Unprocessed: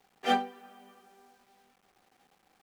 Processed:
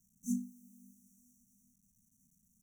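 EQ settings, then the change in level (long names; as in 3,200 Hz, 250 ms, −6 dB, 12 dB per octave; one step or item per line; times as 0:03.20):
linear-phase brick-wall band-stop 250–5,600 Hz
+4.0 dB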